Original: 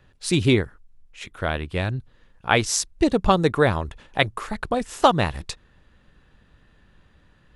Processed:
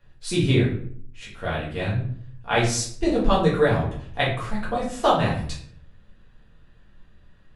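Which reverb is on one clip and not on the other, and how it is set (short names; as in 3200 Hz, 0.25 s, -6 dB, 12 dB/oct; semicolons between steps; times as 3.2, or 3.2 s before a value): shoebox room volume 68 m³, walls mixed, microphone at 1.7 m; gain -10 dB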